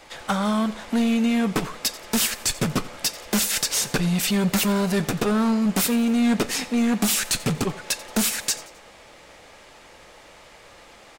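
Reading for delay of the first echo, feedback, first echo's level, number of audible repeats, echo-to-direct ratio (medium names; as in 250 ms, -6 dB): 88 ms, 42%, -19.0 dB, 3, -18.0 dB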